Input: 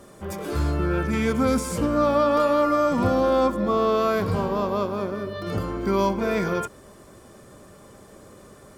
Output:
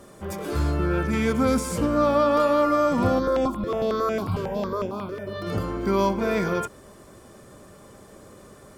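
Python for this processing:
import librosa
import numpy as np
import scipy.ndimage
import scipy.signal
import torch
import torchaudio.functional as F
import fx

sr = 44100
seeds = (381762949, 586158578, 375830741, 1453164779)

y = fx.phaser_held(x, sr, hz=11.0, low_hz=210.0, high_hz=4200.0, at=(3.18, 5.26), fade=0.02)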